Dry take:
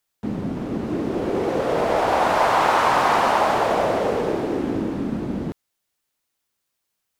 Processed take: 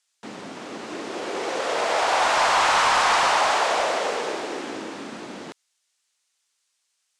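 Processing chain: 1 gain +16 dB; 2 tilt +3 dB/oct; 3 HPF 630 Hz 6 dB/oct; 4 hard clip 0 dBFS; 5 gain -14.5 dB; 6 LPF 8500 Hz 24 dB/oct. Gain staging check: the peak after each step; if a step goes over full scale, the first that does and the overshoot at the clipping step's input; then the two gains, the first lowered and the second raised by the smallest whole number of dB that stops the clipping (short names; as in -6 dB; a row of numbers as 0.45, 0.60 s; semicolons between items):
+11.5, +11.0, +9.5, 0.0, -14.5, -13.0 dBFS; step 1, 9.5 dB; step 1 +6 dB, step 5 -4.5 dB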